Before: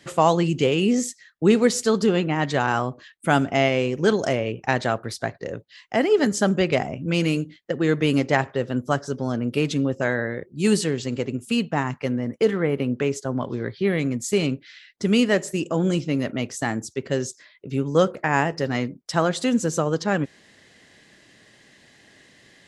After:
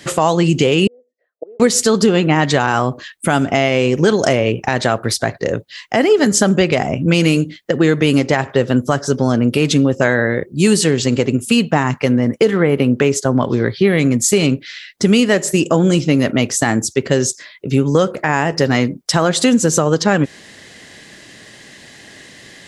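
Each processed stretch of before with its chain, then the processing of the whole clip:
0.87–1.60 s: inverted gate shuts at -17 dBFS, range -27 dB + Butterworth band-pass 550 Hz, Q 2.4
whole clip: treble shelf 5.1 kHz +4.5 dB; compression, threshold -21 dBFS; loudness maximiser +13.5 dB; trim -1 dB

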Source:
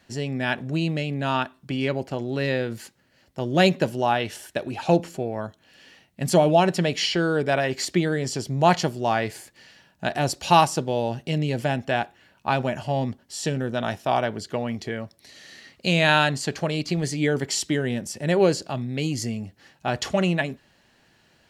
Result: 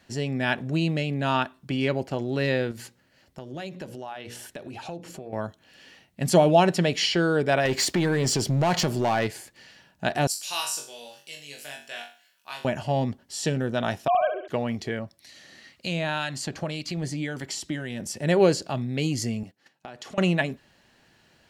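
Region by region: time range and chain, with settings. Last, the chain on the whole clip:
2.71–5.33 s: hum notches 60/120/180/240/300/360/420/480/540 Hz + compression 4:1, threshold -36 dBFS
7.65–9.27 s: compression 3:1, threshold -25 dBFS + waveshaping leveller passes 2
10.27–12.65 s: differentiator + band-stop 830 Hz, Q 11 + flutter echo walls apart 3.6 m, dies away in 0.39 s
14.08–14.48 s: formants replaced by sine waves + flutter echo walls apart 11.5 m, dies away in 0.56 s
14.99–18.00 s: band-stop 430 Hz, Q 7.3 + compression 2:1, threshold -26 dBFS + harmonic tremolo 1.9 Hz, depth 50%, crossover 1.3 kHz
19.43–20.18 s: high-pass 170 Hz + gate -51 dBFS, range -12 dB + compression 8:1, threshold -37 dBFS
whole clip: none

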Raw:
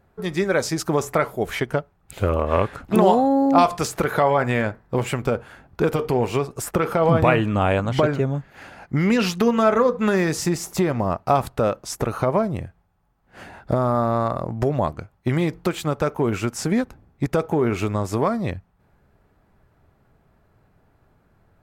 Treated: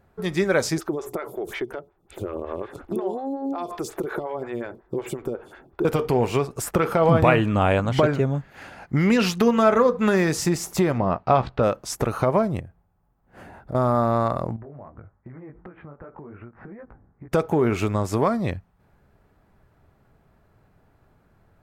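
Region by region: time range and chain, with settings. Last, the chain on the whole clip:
0.78–5.85 s: compression 8:1, threshold -26 dBFS + small resonant body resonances 360/3500 Hz, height 12 dB, ringing for 40 ms + lamp-driven phase shifter 5.5 Hz
10.98–11.63 s: low-pass 4.4 kHz 24 dB/octave + doubling 16 ms -11 dB
12.60–13.75 s: peaking EQ 4.3 kHz -10.5 dB 2.8 oct + compression 2:1, threshold -39 dBFS
14.56–17.32 s: steep low-pass 1.9 kHz + chorus 2.6 Hz, delay 16.5 ms + compression 16:1, threshold -37 dBFS
whole clip: none

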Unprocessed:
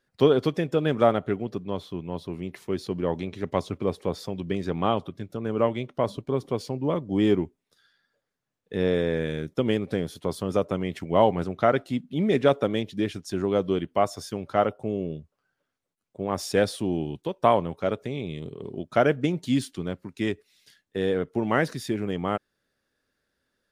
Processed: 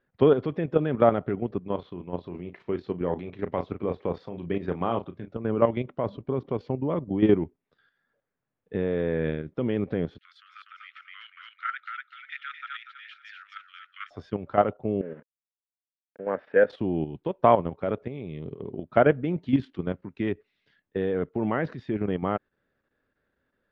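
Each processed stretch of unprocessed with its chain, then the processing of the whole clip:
1.59–5.33 s: bass shelf 250 Hz -4.5 dB + doubling 34 ms -9 dB
10.18–14.11 s: steep high-pass 1.3 kHz 96 dB/octave + feedback delay 245 ms, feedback 24%, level -4 dB
15.01–16.70 s: small samples zeroed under -42 dBFS + cabinet simulation 300–2400 Hz, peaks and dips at 350 Hz -9 dB, 500 Hz +6 dB, 750 Hz -7 dB, 1.1 kHz -8 dB, 1.6 kHz +8 dB, 2.3 kHz -3 dB
whole clip: Bessel low-pass 2 kHz, order 4; level held to a coarse grid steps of 10 dB; trim +4 dB

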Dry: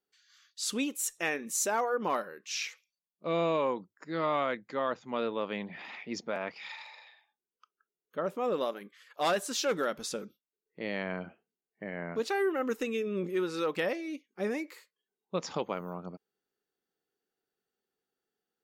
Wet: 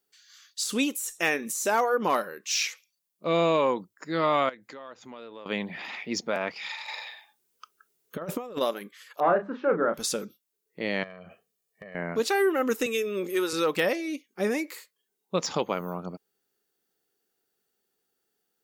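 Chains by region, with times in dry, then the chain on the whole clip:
4.49–5.46 s: peaking EQ 160 Hz -9 dB 0.6 oct + compression 4:1, threshold -48 dBFS
6.88–8.61 s: peaking EQ 110 Hz +5 dB 1.1 oct + compressor with a negative ratio -37 dBFS, ratio -0.5
9.20–9.94 s: low-pass 1.5 kHz 24 dB/octave + hum notches 50/100/150/200/250/300 Hz + doubling 35 ms -8 dB
11.03–11.95 s: compression 8:1, threshold -47 dBFS + comb 1.7 ms, depth 72%
12.86–13.53 s: high-pass 320 Hz + treble shelf 5.9 kHz +7.5 dB
whole clip: de-esser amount 80%; treble shelf 5.6 kHz +10 dB; trim +5.5 dB

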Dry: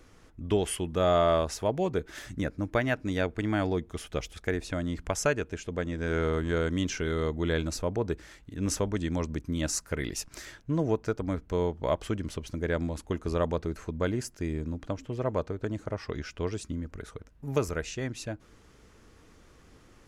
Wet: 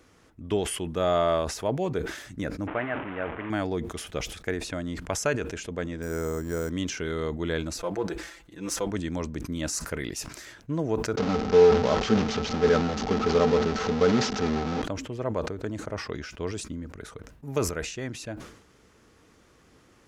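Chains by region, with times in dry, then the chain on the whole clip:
2.67–3.50 s: one-bit delta coder 16 kbps, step -27 dBFS + low-pass 2.1 kHz + bass shelf 360 Hz -9 dB
6.02–6.70 s: tape spacing loss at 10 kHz 30 dB + careless resampling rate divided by 6×, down none, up hold
7.78–8.91 s: partial rectifier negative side -3 dB + peaking EQ 150 Hz -10.5 dB 1.3 oct + comb 5.9 ms, depth 85%
11.17–14.82 s: one-bit delta coder 32 kbps, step -25.5 dBFS + small resonant body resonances 220/440/770/1300 Hz, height 15 dB, ringing for 95 ms
whole clip: high-pass 110 Hz 6 dB/octave; decay stretcher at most 76 dB/s

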